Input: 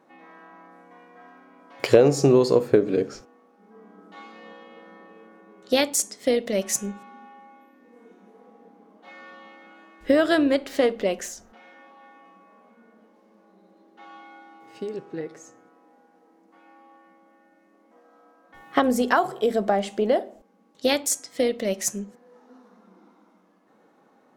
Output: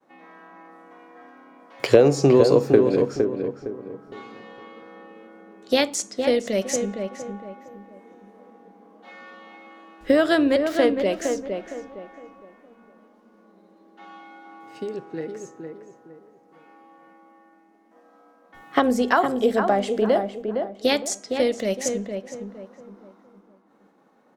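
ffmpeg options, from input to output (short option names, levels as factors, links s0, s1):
-filter_complex "[0:a]agate=range=0.0224:threshold=0.00158:ratio=3:detection=peak,acrossover=split=380|7300[s0][s1][s2];[s2]acompressor=threshold=0.00447:ratio=6[s3];[s0][s1][s3]amix=inputs=3:normalize=0,asplit=2[s4][s5];[s5]adelay=461,lowpass=f=1700:p=1,volume=0.531,asplit=2[s6][s7];[s7]adelay=461,lowpass=f=1700:p=1,volume=0.34,asplit=2[s8][s9];[s9]adelay=461,lowpass=f=1700:p=1,volume=0.34,asplit=2[s10][s11];[s11]adelay=461,lowpass=f=1700:p=1,volume=0.34[s12];[s4][s6][s8][s10][s12]amix=inputs=5:normalize=0,volume=1.12"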